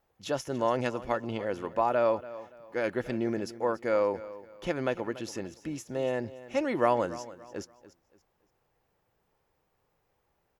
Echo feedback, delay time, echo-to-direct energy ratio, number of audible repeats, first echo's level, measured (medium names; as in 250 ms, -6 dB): 32%, 286 ms, -16.0 dB, 2, -16.5 dB